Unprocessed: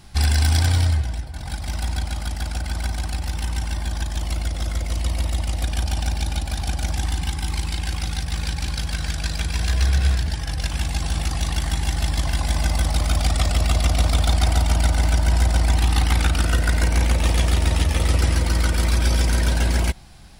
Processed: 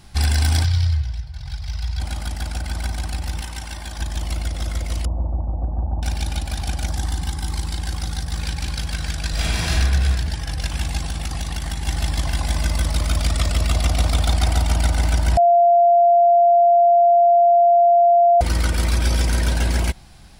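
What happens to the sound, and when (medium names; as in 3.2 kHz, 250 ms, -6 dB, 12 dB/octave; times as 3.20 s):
0.64–2.00 s: FFT filter 140 Hz 0 dB, 230 Hz -22 dB, 1 kHz -9 dB, 3.1 kHz -4 dB, 5.1 kHz 0 dB, 8.7 kHz -16 dB, 13 kHz -12 dB
3.41–3.99 s: bass shelf 340 Hz -8 dB
5.05–6.03 s: steep low-pass 970 Hz
6.87–8.39 s: peaking EQ 2.5 kHz -8 dB 0.58 oct
9.30–9.72 s: reverb throw, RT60 1.1 s, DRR -5.5 dB
11.00–11.88 s: compression, threshold -21 dBFS
12.56–13.72 s: band-stop 770 Hz, Q 6.3
15.37–18.41 s: bleep 692 Hz -10 dBFS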